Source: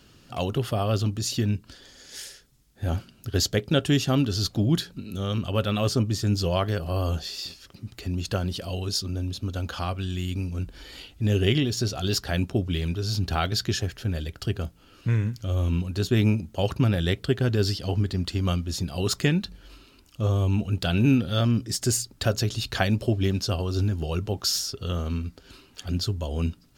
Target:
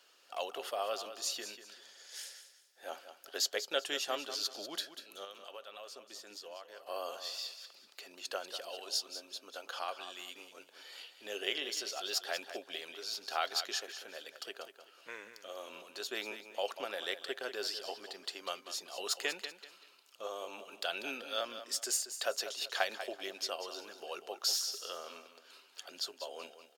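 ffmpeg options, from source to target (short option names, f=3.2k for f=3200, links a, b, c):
-filter_complex "[0:a]highpass=f=510:w=0.5412,highpass=f=510:w=1.3066,asettb=1/sr,asplit=3[a][b][c];[a]atrim=end=5.244[d];[b]atrim=start=5.24:end=6.87,asetpts=PTS-STARTPTS,afade=t=in:d=0.004:c=qsin,afade=t=out:st=1.626:d=0.004:c=qsin,acompressor=threshold=-40dB:ratio=6[e];[c]atrim=start=6.866[f];[d][e]acrossfade=d=0.004:c1=hsin:c2=qsin[g];[g][f]acrossfade=d=0.004:c1=qsin:c2=hsin,aecho=1:1:192|384|576:0.282|0.0846|0.0254,volume=-6.5dB"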